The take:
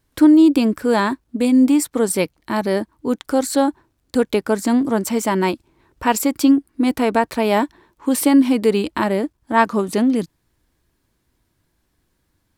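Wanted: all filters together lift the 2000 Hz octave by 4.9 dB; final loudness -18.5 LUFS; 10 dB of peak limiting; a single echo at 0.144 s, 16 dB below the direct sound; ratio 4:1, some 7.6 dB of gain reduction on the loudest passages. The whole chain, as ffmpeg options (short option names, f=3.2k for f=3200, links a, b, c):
-af "equalizer=f=2k:t=o:g=6,acompressor=threshold=-17dB:ratio=4,alimiter=limit=-15.5dB:level=0:latency=1,aecho=1:1:144:0.158,volume=6.5dB"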